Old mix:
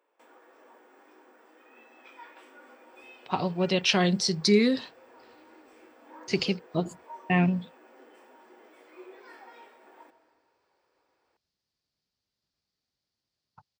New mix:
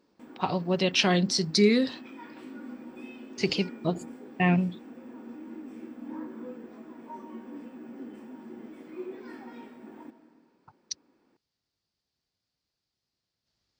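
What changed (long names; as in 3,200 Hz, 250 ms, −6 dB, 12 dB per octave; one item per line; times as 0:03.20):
speech: entry −2.90 s
background: remove high-pass filter 480 Hz 24 dB per octave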